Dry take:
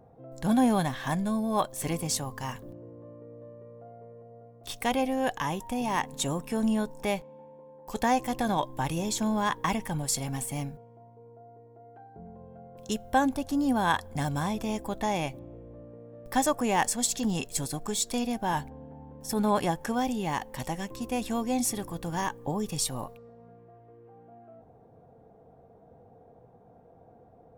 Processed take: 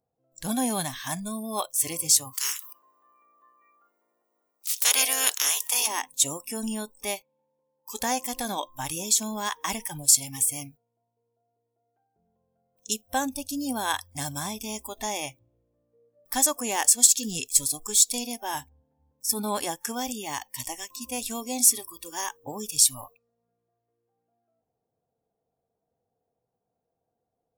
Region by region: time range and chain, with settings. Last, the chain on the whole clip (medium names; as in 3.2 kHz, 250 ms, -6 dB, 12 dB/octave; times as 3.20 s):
2.32–5.86 s: spectral peaks clipped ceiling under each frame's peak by 27 dB + high-pass 260 Hz 24 dB/octave
whole clip: treble shelf 3.2 kHz +10.5 dB; spectral noise reduction 22 dB; tone controls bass -2 dB, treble +7 dB; trim -4 dB